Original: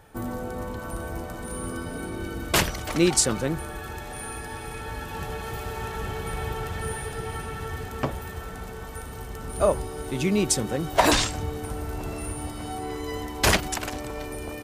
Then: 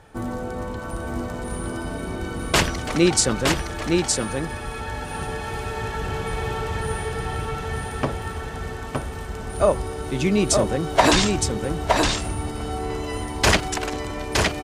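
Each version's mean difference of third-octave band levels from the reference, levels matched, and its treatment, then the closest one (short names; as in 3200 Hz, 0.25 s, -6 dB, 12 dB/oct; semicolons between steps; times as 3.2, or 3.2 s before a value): 3.5 dB: LPF 8700 Hz 12 dB/oct; on a send: echo 0.915 s -3.5 dB; on the sum: gain +3 dB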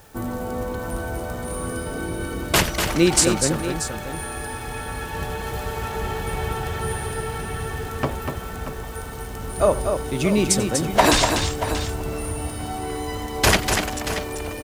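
2.5 dB: in parallel at -7 dB: requantised 8-bit, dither triangular; on the sum: tapped delay 90/244/632 ms -18.5/-6/-11.5 dB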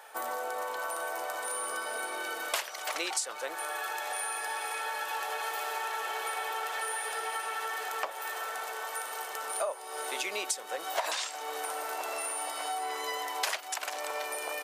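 13.5 dB: HPF 590 Hz 24 dB/oct; compressor 6:1, threshold -37 dBFS, peak gain reduction 21 dB; gain +6 dB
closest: second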